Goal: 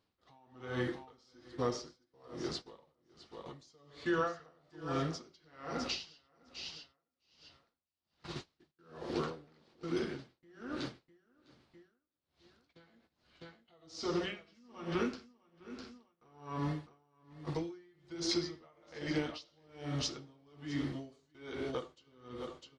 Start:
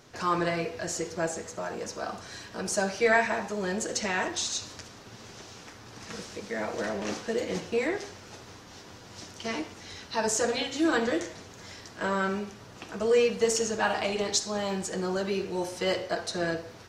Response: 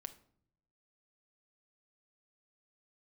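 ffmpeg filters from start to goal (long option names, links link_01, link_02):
-af "asetrate=32667,aresample=44100,agate=range=-22dB:threshold=-38dB:ratio=16:detection=peak,aecho=1:1:654|1308|1962:0.266|0.0559|0.0117,acompressor=threshold=-27dB:ratio=4,aeval=exprs='val(0)*pow(10,-33*(0.5-0.5*cos(2*PI*1.2*n/s))/20)':channel_layout=same,volume=-1.5dB"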